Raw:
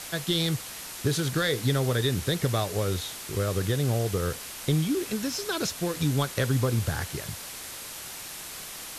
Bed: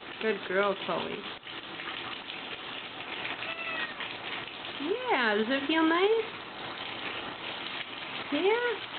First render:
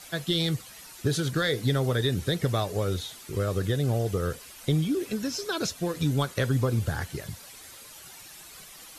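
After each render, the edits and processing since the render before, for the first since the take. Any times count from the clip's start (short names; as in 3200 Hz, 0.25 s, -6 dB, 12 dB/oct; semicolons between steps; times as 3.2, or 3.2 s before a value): denoiser 11 dB, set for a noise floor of -40 dBFS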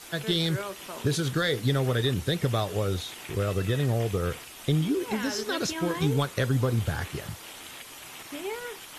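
add bed -8.5 dB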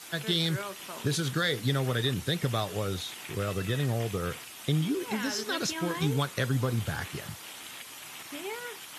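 HPF 120 Hz 12 dB/oct; bell 440 Hz -4.5 dB 1.7 oct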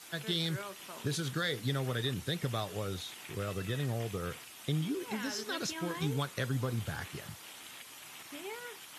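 gain -5.5 dB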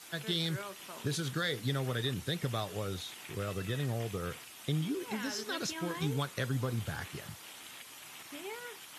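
nothing audible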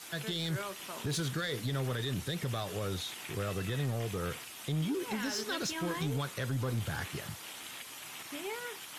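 limiter -26.5 dBFS, peak gain reduction 7 dB; sample leveller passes 1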